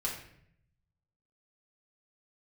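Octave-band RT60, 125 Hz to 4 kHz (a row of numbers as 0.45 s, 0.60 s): 1.4 s, 0.95 s, 0.75 s, 0.60 s, 0.70 s, 0.50 s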